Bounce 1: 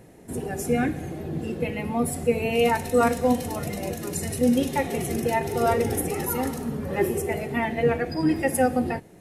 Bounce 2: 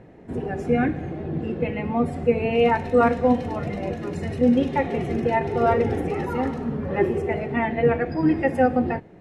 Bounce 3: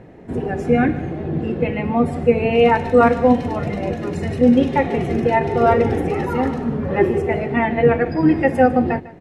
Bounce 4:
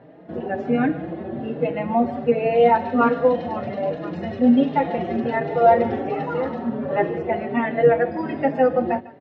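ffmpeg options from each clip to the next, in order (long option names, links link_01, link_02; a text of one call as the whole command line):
ffmpeg -i in.wav -af "lowpass=2400,volume=2.5dB" out.wav
ffmpeg -i in.wav -af "aecho=1:1:151:0.126,volume=5dB" out.wav
ffmpeg -i in.wav -filter_complex "[0:a]highpass=180,equalizer=frequency=400:width_type=q:width=4:gain=-4,equalizer=frequency=610:width_type=q:width=4:gain=7,equalizer=frequency=2300:width_type=q:width=4:gain=-6,lowpass=frequency=4200:width=0.5412,lowpass=frequency=4200:width=1.3066,asplit=2[link_01][link_02];[link_02]adelay=4.6,afreqshift=1.3[link_03];[link_01][link_03]amix=inputs=2:normalize=1" out.wav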